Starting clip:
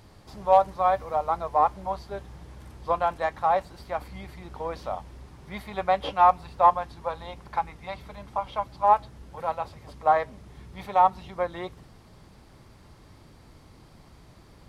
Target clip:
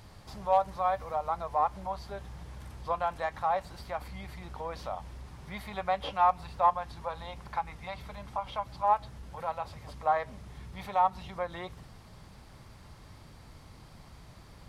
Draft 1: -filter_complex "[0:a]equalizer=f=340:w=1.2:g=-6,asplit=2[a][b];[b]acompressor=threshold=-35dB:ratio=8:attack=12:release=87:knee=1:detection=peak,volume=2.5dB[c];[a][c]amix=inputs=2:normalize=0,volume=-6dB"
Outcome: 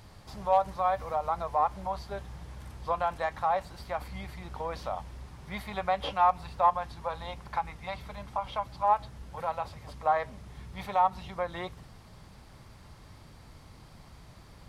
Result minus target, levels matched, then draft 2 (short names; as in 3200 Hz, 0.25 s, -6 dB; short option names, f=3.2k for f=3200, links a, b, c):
compressor: peak gain reduction -7.5 dB
-filter_complex "[0:a]equalizer=f=340:w=1.2:g=-6,asplit=2[a][b];[b]acompressor=threshold=-43.5dB:ratio=8:attack=12:release=87:knee=1:detection=peak,volume=2.5dB[c];[a][c]amix=inputs=2:normalize=0,volume=-6dB"